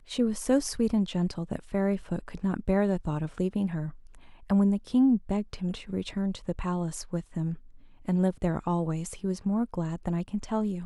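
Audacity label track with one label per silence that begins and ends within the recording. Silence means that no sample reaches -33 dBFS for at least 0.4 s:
3.890000	4.500000	silence
7.540000	8.080000	silence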